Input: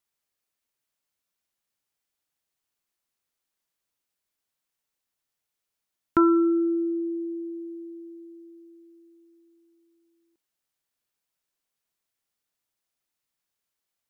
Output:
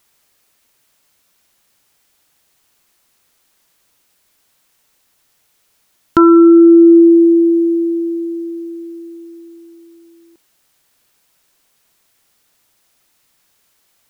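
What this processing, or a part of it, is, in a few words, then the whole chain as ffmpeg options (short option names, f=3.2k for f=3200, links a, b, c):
loud club master: -af "acompressor=threshold=-28dB:ratio=1.5,asoftclip=type=hard:threshold=-15dB,alimiter=level_in=24.5dB:limit=-1dB:release=50:level=0:latency=1,volume=-1dB"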